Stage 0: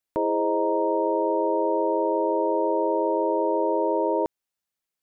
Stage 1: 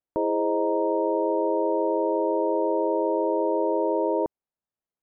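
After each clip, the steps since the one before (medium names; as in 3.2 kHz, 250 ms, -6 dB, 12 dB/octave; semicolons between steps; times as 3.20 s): low-pass 1 kHz 12 dB/octave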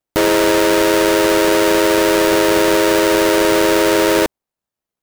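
square wave that keeps the level; trim +7 dB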